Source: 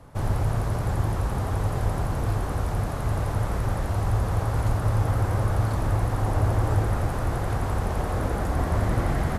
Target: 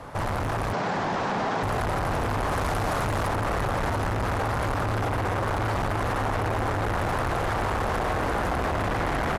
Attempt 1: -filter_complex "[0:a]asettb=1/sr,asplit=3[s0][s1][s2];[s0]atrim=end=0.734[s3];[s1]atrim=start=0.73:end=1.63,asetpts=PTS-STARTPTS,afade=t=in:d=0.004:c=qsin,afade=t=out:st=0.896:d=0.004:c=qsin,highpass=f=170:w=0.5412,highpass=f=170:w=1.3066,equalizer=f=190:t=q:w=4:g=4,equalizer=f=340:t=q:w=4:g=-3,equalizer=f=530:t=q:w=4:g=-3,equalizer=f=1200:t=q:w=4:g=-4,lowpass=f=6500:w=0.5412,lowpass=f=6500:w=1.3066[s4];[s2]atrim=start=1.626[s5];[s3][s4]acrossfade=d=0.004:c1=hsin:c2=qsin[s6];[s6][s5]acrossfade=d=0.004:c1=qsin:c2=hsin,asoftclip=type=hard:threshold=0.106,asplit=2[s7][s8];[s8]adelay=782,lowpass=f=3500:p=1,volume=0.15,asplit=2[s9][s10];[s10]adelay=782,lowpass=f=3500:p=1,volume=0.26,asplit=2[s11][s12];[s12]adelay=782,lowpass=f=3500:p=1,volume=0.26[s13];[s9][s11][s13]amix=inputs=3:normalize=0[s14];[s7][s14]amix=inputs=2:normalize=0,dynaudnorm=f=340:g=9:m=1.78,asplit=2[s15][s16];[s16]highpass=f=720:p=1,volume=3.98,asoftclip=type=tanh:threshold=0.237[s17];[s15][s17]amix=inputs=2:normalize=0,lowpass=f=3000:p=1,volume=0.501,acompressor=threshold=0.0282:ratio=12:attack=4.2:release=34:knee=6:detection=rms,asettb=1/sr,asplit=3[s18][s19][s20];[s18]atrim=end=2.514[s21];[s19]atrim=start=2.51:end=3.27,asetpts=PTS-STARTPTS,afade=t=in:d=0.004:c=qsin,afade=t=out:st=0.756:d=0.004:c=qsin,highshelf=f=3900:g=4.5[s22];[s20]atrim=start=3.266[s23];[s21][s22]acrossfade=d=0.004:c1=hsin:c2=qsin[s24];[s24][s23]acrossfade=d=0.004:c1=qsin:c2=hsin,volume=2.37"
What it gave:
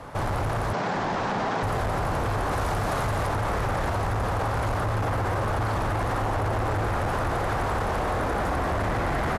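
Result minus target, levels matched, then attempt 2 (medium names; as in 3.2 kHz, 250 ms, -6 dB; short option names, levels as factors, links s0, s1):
hard clipper: distortion -8 dB
-filter_complex "[0:a]asettb=1/sr,asplit=3[s0][s1][s2];[s0]atrim=end=0.734[s3];[s1]atrim=start=0.73:end=1.63,asetpts=PTS-STARTPTS,afade=t=in:d=0.004:c=qsin,afade=t=out:st=0.896:d=0.004:c=qsin,highpass=f=170:w=0.5412,highpass=f=170:w=1.3066,equalizer=f=190:t=q:w=4:g=4,equalizer=f=340:t=q:w=4:g=-3,equalizer=f=530:t=q:w=4:g=-3,equalizer=f=1200:t=q:w=4:g=-4,lowpass=f=6500:w=0.5412,lowpass=f=6500:w=1.3066[s4];[s2]atrim=start=1.626[s5];[s3][s4]acrossfade=d=0.004:c1=hsin:c2=qsin[s6];[s6][s5]acrossfade=d=0.004:c1=qsin:c2=hsin,asoftclip=type=hard:threshold=0.0447,asplit=2[s7][s8];[s8]adelay=782,lowpass=f=3500:p=1,volume=0.15,asplit=2[s9][s10];[s10]adelay=782,lowpass=f=3500:p=1,volume=0.26,asplit=2[s11][s12];[s12]adelay=782,lowpass=f=3500:p=1,volume=0.26[s13];[s9][s11][s13]amix=inputs=3:normalize=0[s14];[s7][s14]amix=inputs=2:normalize=0,dynaudnorm=f=340:g=9:m=1.78,asplit=2[s15][s16];[s16]highpass=f=720:p=1,volume=3.98,asoftclip=type=tanh:threshold=0.237[s17];[s15][s17]amix=inputs=2:normalize=0,lowpass=f=3000:p=1,volume=0.501,acompressor=threshold=0.0282:ratio=12:attack=4.2:release=34:knee=6:detection=rms,asettb=1/sr,asplit=3[s18][s19][s20];[s18]atrim=end=2.514[s21];[s19]atrim=start=2.51:end=3.27,asetpts=PTS-STARTPTS,afade=t=in:d=0.004:c=qsin,afade=t=out:st=0.756:d=0.004:c=qsin,highshelf=f=3900:g=4.5[s22];[s20]atrim=start=3.266[s23];[s21][s22]acrossfade=d=0.004:c1=hsin:c2=qsin[s24];[s24][s23]acrossfade=d=0.004:c1=qsin:c2=hsin,volume=2.37"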